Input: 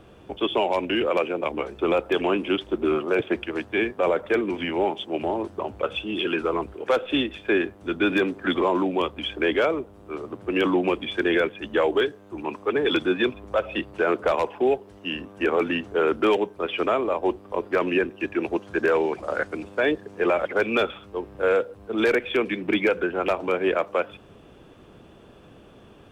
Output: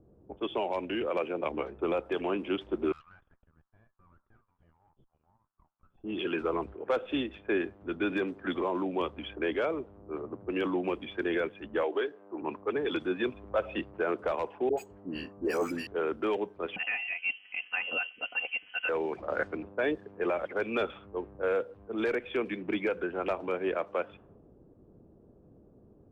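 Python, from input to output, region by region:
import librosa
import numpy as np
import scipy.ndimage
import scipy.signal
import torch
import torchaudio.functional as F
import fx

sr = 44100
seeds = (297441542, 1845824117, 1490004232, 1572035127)

y = fx.chain(x, sr, fx.steep_highpass(hz=1200.0, slope=36),
    fx.peak_eq(hz=2300.0, db=-12.5, octaves=0.81),
    fx.tube_stage(drive_db=41.0, bias=0.8), at=(2.92, 6.04))
y = fx.chain(y, sr, fx.highpass(hz=330.0, slope=12),
    fx.air_absorb(metres=130.0),
    fx.band_squash(depth_pct=40), at=(11.83, 12.42))
y = fx.chain(y, sr, fx.resample_bad(factor=6, down='filtered', up='hold'),
    fx.dispersion(late='highs', ms=86.0, hz=860.0), at=(14.69, 15.87))
y = fx.chain(y, sr, fx.freq_invert(carrier_hz=3100),
    fx.highpass(hz=180.0, slope=6),
    fx.comb(ms=4.0, depth=0.58), at=(16.76, 18.89))
y = fx.env_lowpass(y, sr, base_hz=400.0, full_db=-20.5)
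y = fx.high_shelf(y, sr, hz=3700.0, db=-9.5)
y = fx.rider(y, sr, range_db=4, speed_s=0.5)
y = y * librosa.db_to_amplitude(-7.5)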